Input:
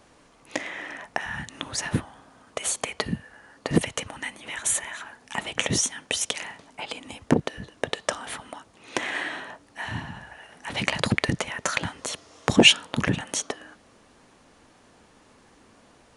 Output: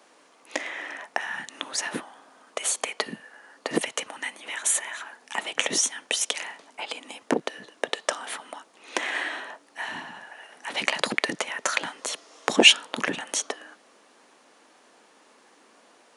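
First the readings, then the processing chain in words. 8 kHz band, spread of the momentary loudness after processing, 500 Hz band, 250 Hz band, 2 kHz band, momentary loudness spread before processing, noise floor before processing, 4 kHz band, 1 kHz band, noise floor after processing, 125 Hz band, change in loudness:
+1.0 dB, 14 LU, -1.0 dB, -6.0 dB, +1.0 dB, 14 LU, -57 dBFS, +1.0 dB, +0.5 dB, -58 dBFS, -17.5 dB, 0.0 dB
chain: Bessel high-pass 370 Hz, order 4; gain +1 dB

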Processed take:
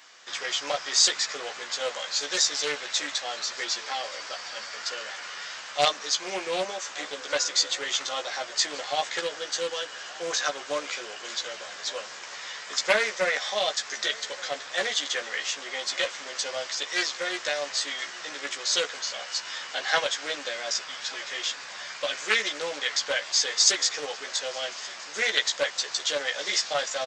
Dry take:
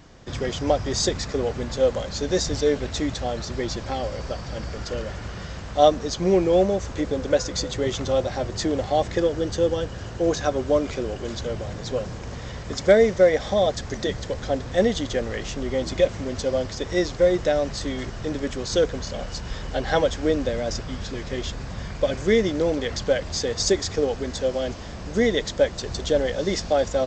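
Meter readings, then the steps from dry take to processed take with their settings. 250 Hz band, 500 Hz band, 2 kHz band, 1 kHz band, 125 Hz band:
-20.0 dB, -11.5 dB, +4.5 dB, -3.5 dB, -28.0 dB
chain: HPF 1400 Hz 12 dB/oct; doubler 14 ms -3.5 dB; echo 1.173 s -21.5 dB; Doppler distortion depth 0.18 ms; gain +4.5 dB

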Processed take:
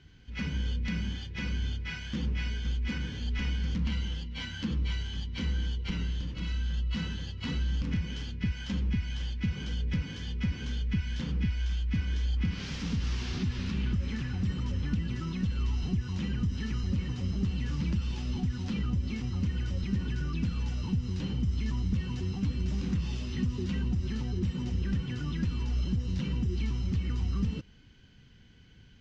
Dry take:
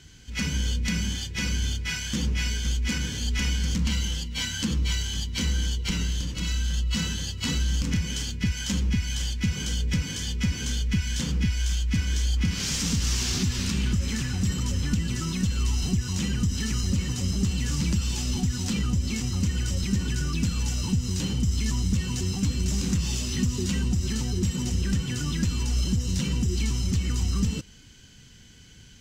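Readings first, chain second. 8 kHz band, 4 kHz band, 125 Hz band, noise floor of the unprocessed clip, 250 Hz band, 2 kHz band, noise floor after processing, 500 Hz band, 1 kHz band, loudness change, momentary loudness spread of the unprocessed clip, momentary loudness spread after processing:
-22.0 dB, -11.0 dB, -4.5 dB, -49 dBFS, -5.0 dB, -7.0 dB, -54 dBFS, -5.0 dB, -5.5 dB, -5.5 dB, 3 LU, 3 LU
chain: air absorption 250 m; gain -4.5 dB

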